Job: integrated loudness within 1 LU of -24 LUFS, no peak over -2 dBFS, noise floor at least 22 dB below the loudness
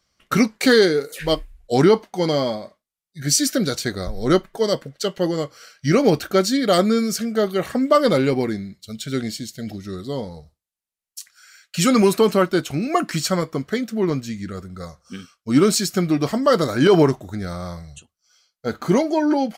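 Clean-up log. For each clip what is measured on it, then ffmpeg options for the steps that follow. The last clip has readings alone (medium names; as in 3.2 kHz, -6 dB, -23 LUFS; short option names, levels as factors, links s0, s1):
loudness -20.0 LUFS; peak level -4.5 dBFS; loudness target -24.0 LUFS
-> -af "volume=0.631"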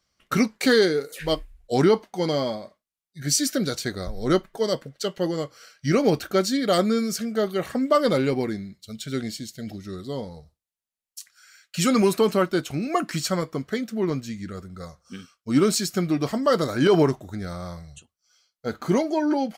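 loudness -24.0 LUFS; peak level -8.5 dBFS; noise floor -91 dBFS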